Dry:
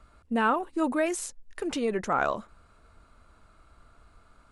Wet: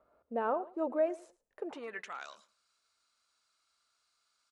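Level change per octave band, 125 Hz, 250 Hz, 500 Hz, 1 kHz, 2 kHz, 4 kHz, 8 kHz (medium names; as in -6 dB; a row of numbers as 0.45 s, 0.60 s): under -20 dB, -11.5 dB, -4.5 dB, -10.0 dB, -13.0 dB, -14.5 dB, -23.5 dB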